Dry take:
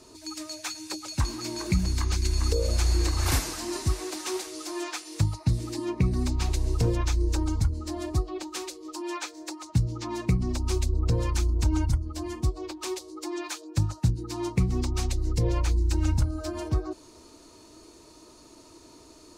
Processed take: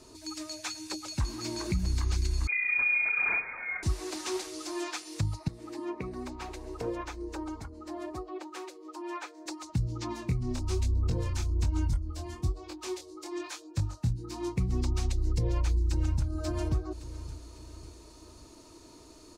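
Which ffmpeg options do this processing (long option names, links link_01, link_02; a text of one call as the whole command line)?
ffmpeg -i in.wav -filter_complex "[0:a]asettb=1/sr,asplit=3[link_01][link_02][link_03];[link_01]atrim=end=2.474[link_04];[link_02]atrim=start=2.47:end=3.83,asetpts=PTS-STARTPTS,afade=type=in:duration=0.004:curve=qsin,afade=type=out:start_time=1.356:duration=0.004:curve=qsin,lowpass=frequency=2100:width_type=q:width=0.5098,lowpass=frequency=2100:width_type=q:width=0.6013,lowpass=frequency=2100:width_type=q:width=0.9,lowpass=frequency=2100:width_type=q:width=2.563,afreqshift=-2500[link_05];[link_03]atrim=start=3.826[link_06];[link_04][link_05]acrossfade=duration=0.004:curve1=hsin:curve2=qsin[link_07];[link_07][link_06]acrossfade=duration=0.004:curve1=qsin:curve2=hsin,asettb=1/sr,asplit=3[link_08][link_09][link_10];[link_08]atrim=end=5.484[link_11];[link_09]atrim=start=5.48:end=9.46,asetpts=PTS-STARTPTS,afade=type=in:duration=0.004:curve=qsin,afade=type=out:start_time=3.976:duration=0.004:curve=qsin,acrossover=split=300 2300:gain=0.0794 1 0.251[link_12][link_13][link_14];[link_12][link_13][link_14]amix=inputs=3:normalize=0[link_15];[link_10]atrim=start=9.456[link_16];[link_11][link_15]acrossfade=duration=0.004:curve1=hsin:curve2=qsin[link_17];[link_17][link_16]acrossfade=duration=0.004:curve1=qsin:curve2=hsin,asplit=3[link_18][link_19][link_20];[link_18]afade=type=out:start_time=10.12:duration=0.02[link_21];[link_19]flanger=delay=20:depth=4.6:speed=1.1,afade=type=in:start_time=10.12:duration=0.02,afade=type=out:start_time=14.57:duration=0.02[link_22];[link_20]afade=type=in:start_time=14.57:duration=0.02[link_23];[link_21][link_22][link_23]amix=inputs=3:normalize=0,asplit=2[link_24][link_25];[link_25]afade=type=in:start_time=15.3:duration=0.01,afade=type=out:start_time=16.3:duration=0.01,aecho=0:1:550|1100|1650|2200:0.223872|0.100742|0.0453341|0.0204003[link_26];[link_24][link_26]amix=inputs=2:normalize=0,lowshelf=frequency=110:gain=5,alimiter=limit=-18dB:level=0:latency=1:release=207,acrossover=split=8900[link_27][link_28];[link_28]acompressor=threshold=-52dB:ratio=4:attack=1:release=60[link_29];[link_27][link_29]amix=inputs=2:normalize=0,volume=-2dB" out.wav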